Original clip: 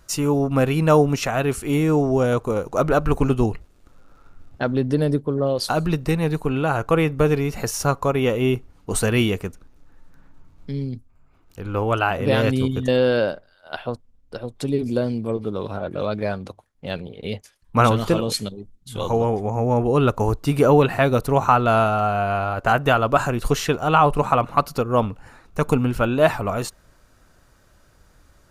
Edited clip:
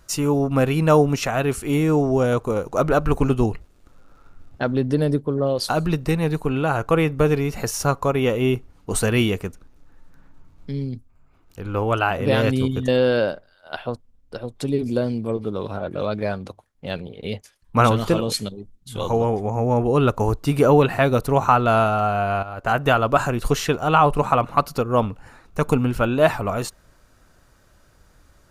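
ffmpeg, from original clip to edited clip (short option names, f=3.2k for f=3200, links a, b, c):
-filter_complex "[0:a]asplit=2[a][b];[a]atrim=end=22.43,asetpts=PTS-STARTPTS,afade=t=out:st=22.426:d=0.004:c=hsin:silence=0.237137[c];[b]atrim=start=22.43,asetpts=PTS-STARTPTS,afade=t=in:d=0.42:silence=0.237137[d];[c][d]concat=n=2:v=0:a=1"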